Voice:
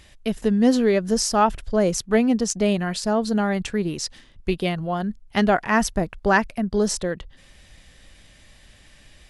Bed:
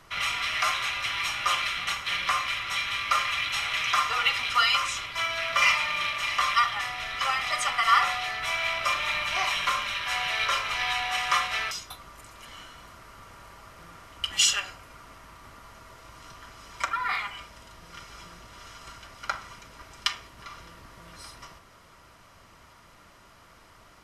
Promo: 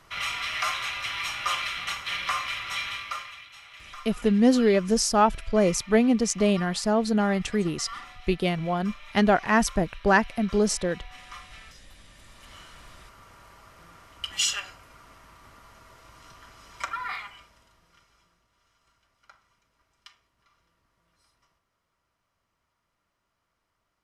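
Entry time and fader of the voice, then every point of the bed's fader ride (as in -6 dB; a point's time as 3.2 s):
3.80 s, -1.5 dB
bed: 2.87 s -2 dB
3.49 s -19.5 dB
11.88 s -19.5 dB
12.56 s -3.5 dB
17 s -3.5 dB
18.47 s -24 dB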